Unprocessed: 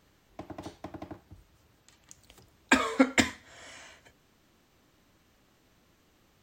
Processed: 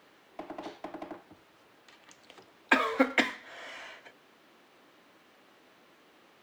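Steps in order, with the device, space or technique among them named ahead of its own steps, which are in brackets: phone line with mismatched companding (BPF 330–3500 Hz; G.711 law mismatch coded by mu)

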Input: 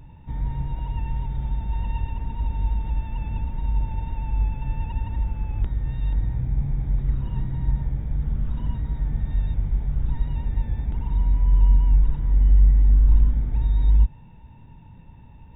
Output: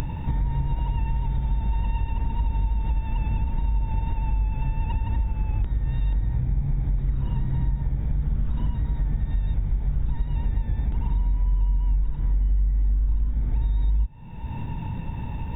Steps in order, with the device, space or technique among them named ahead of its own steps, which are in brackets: upward and downward compression (upward compressor, threshold -18 dBFS; compressor, threshold -21 dBFS, peak gain reduction 11 dB); gain +2 dB

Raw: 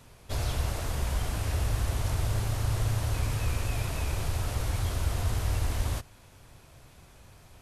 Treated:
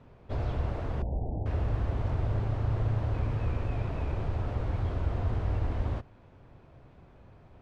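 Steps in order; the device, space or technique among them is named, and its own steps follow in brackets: 1.02–1.46 elliptic low-pass 820 Hz, stop band 40 dB; phone in a pocket (LPF 3300 Hz 12 dB/oct; bell 310 Hz +5.5 dB 2.9 oct; high shelf 2200 Hz -10.5 dB); gain -2.5 dB

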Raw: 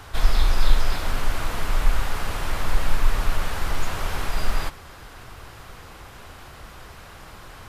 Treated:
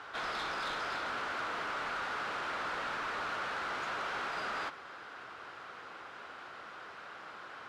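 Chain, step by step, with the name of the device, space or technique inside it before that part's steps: intercom (BPF 320–3900 Hz; bell 1400 Hz +7 dB 0.47 oct; soft clip -26.5 dBFS, distortion -15 dB); gain -4.5 dB

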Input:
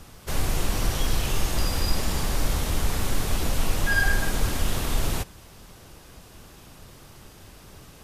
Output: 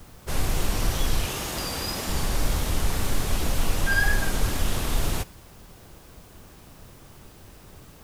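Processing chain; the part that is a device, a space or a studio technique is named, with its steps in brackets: 1.25–2.09 HPF 180 Hz 6 dB/oct; plain cassette with noise reduction switched in (mismatched tape noise reduction decoder only; wow and flutter; white noise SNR 32 dB)

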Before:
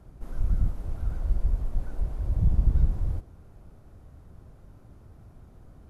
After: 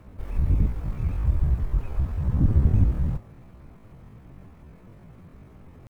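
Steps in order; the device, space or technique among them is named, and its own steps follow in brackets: chipmunk voice (pitch shift +9 st); gain +2.5 dB

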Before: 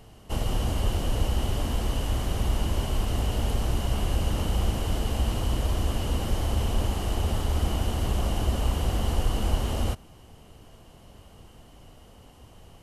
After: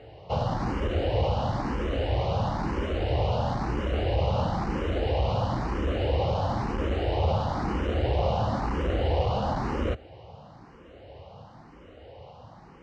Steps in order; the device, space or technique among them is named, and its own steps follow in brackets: barber-pole phaser into a guitar amplifier (endless phaser +1 Hz; soft clip -19.5 dBFS, distortion -21 dB; speaker cabinet 80–4200 Hz, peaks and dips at 230 Hz -4 dB, 530 Hz +7 dB, 830 Hz +4 dB, 3100 Hz -8 dB); gain +7 dB

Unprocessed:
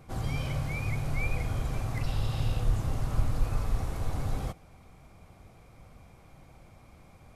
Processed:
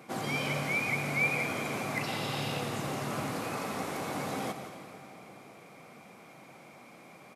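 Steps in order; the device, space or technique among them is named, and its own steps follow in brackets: PA in a hall (HPF 190 Hz 24 dB/oct; bell 2200 Hz +4 dB 0.69 oct; echo 0.175 s -11.5 dB; reverb RT60 3.5 s, pre-delay 72 ms, DRR 8.5 dB); gain +5 dB

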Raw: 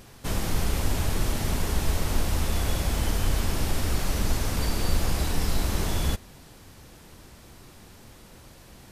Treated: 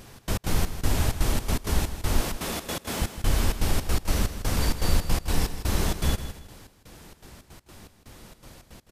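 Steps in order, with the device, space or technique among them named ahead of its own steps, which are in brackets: 2.2–3.02 HPF 180 Hz 12 dB/oct; trance gate with a delay (step gate "xx.x.xx..xxx." 162 bpm -60 dB; feedback echo 0.16 s, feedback 29%, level -11 dB); gain +2 dB

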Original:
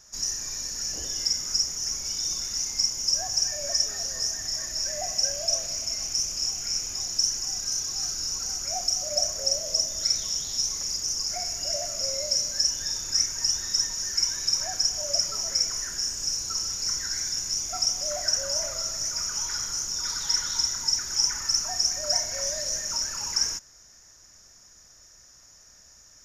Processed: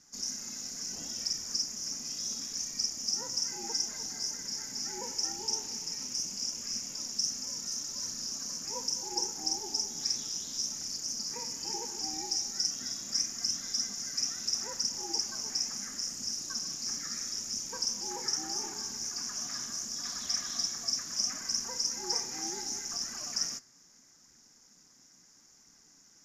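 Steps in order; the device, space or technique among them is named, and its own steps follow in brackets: alien voice (ring modulator 230 Hz; flange 0.74 Hz, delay 0.2 ms, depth 8 ms, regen +69%)

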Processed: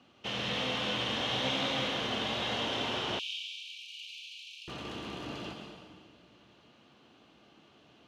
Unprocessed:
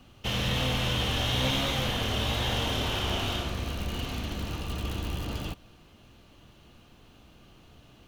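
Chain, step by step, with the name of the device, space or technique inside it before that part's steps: supermarket ceiling speaker (BPF 210–5200 Hz; reverb RT60 1.6 s, pre-delay 0.103 s, DRR 3 dB); 3.19–4.68 Chebyshev high-pass 2300 Hz, order 10; gain -4 dB

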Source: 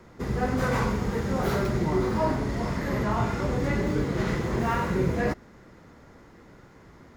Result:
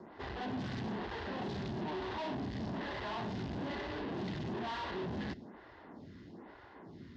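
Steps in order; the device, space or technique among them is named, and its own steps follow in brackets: vibe pedal into a guitar amplifier (photocell phaser 1.1 Hz; tube stage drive 42 dB, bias 0.5; speaker cabinet 92–4300 Hz, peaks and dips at 140 Hz -5 dB, 500 Hz -9 dB, 1300 Hz -9 dB, 2300 Hz -8 dB); gain +7 dB

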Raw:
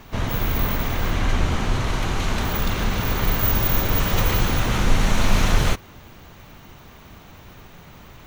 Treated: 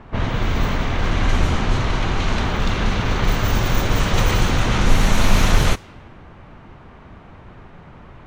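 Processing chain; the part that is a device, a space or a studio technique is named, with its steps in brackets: cassette deck with a dynamic noise filter (white noise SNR 32 dB; low-pass opened by the level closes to 1600 Hz, open at -12 dBFS); gain +3 dB

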